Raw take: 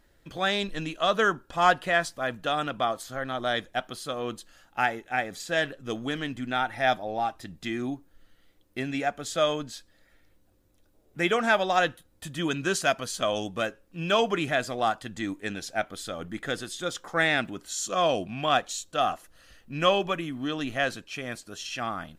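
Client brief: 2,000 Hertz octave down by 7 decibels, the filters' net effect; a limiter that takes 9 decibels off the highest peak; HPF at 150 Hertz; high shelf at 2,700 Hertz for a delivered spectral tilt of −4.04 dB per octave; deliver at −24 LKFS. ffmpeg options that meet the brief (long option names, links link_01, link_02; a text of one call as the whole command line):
ffmpeg -i in.wav -af "highpass=150,equalizer=frequency=2000:width_type=o:gain=-8.5,highshelf=frequency=2700:gain=-3,volume=8.5dB,alimiter=limit=-10.5dB:level=0:latency=1" out.wav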